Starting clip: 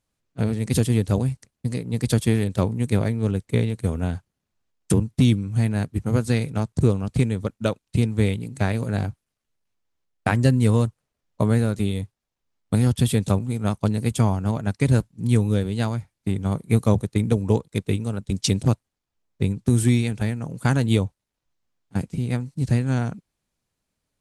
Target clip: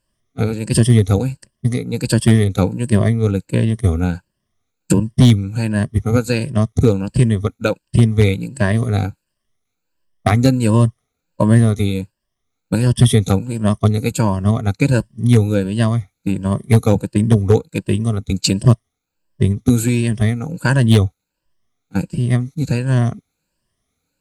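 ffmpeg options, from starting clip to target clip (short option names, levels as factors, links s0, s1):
-af "afftfilt=real='re*pow(10,14/40*sin(2*PI*(1.3*log(max(b,1)*sr/1024/100)/log(2)-(1.4)*(pts-256)/sr)))':imag='im*pow(10,14/40*sin(2*PI*(1.3*log(max(b,1)*sr/1024/100)/log(2)-(1.4)*(pts-256)/sr)))':win_size=1024:overlap=0.75,aeval=exprs='0.501*(abs(mod(val(0)/0.501+3,4)-2)-1)':c=same,bandreject=f=850:w=12,volume=1.68"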